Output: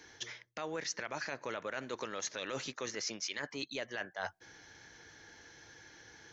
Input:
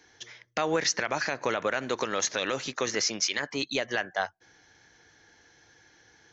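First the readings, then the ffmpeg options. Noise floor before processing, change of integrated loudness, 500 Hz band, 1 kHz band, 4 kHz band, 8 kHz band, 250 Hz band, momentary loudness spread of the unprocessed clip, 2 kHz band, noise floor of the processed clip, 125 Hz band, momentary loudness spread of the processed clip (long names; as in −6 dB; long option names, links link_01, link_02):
−61 dBFS, −11.0 dB, −11.0 dB, −11.5 dB, −10.5 dB, can't be measured, −10.5 dB, 7 LU, −10.0 dB, −64 dBFS, −9.5 dB, 16 LU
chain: -af "bandreject=frequency=740:width=17,areverse,acompressor=threshold=-40dB:ratio=6,areverse,volume=3dB"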